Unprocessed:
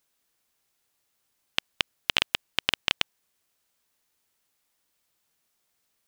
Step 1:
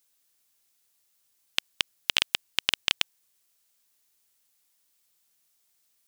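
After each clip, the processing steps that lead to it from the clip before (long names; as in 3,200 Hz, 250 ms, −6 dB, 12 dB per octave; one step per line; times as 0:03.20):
high-shelf EQ 3,100 Hz +11 dB
level −5 dB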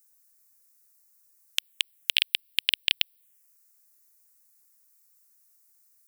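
phaser swept by the level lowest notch 540 Hz, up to 1,200 Hz, full sweep at −35.5 dBFS
spectral tilt +2.5 dB per octave
level −2 dB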